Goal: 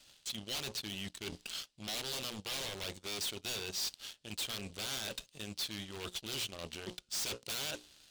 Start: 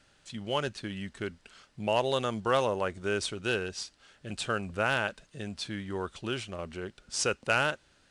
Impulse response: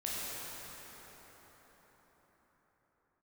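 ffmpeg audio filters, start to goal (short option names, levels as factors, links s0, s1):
-af "bandreject=f=60:t=h:w=6,bandreject=f=120:t=h:w=6,bandreject=f=180:t=h:w=6,bandreject=f=240:t=h:w=6,bandreject=f=300:t=h:w=6,bandreject=f=360:t=h:w=6,bandreject=f=420:t=h:w=6,bandreject=f=480:t=h:w=6,bandreject=f=540:t=h:w=6,aeval=exprs='0.0316*(abs(mod(val(0)/0.0316+3,4)-2)-1)':c=same,areverse,acompressor=threshold=0.00501:ratio=12,areverse,highshelf=f=2400:t=q:w=1.5:g=10.5,asoftclip=type=tanh:threshold=0.0178,aeval=exprs='0.0178*(cos(1*acos(clip(val(0)/0.0178,-1,1)))-cos(1*PI/2))+0.00398*(cos(5*acos(clip(val(0)/0.0178,-1,1)))-cos(5*PI/2))+0.00501*(cos(7*acos(clip(val(0)/0.0178,-1,1)))-cos(7*PI/2))':c=same,volume=1.58"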